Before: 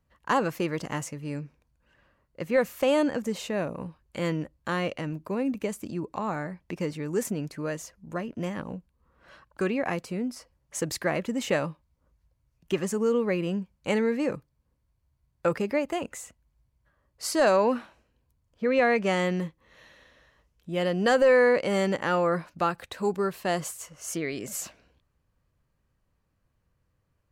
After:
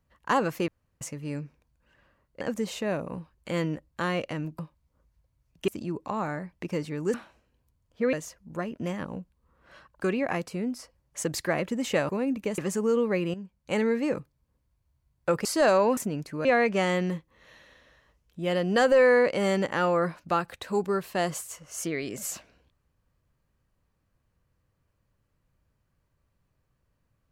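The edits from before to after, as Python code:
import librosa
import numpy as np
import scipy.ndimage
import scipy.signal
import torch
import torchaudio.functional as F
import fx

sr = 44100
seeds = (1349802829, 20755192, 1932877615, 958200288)

y = fx.edit(x, sr, fx.room_tone_fill(start_s=0.68, length_s=0.33),
    fx.cut(start_s=2.41, length_s=0.68),
    fx.swap(start_s=5.27, length_s=0.49, other_s=11.66, other_length_s=1.09),
    fx.swap(start_s=7.22, length_s=0.48, other_s=17.76, other_length_s=0.99),
    fx.fade_in_from(start_s=13.51, length_s=0.5, floor_db=-12.5),
    fx.cut(start_s=15.62, length_s=1.62), tone=tone)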